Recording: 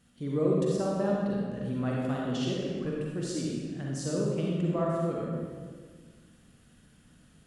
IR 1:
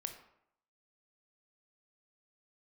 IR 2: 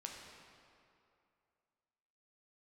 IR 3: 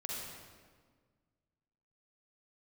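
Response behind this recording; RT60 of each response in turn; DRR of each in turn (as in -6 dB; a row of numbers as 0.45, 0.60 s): 3; 0.75, 2.6, 1.6 s; 6.0, -0.5, -4.0 dB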